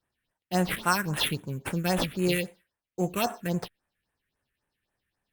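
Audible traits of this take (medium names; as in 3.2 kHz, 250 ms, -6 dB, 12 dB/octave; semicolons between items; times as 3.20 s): aliases and images of a low sample rate 6.9 kHz, jitter 0%; phasing stages 4, 3.7 Hz, lowest notch 760–4800 Hz; Opus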